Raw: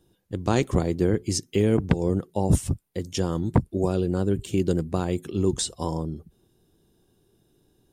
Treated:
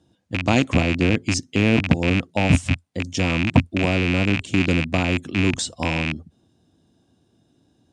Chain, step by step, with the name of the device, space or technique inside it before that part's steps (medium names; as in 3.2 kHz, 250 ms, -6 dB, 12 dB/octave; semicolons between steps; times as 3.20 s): car door speaker with a rattle (rattle on loud lows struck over -29 dBFS, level -14 dBFS; cabinet simulation 81–8000 Hz, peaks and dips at 86 Hz +6 dB, 260 Hz +8 dB, 400 Hz -9 dB, 660 Hz +5 dB); trim +2.5 dB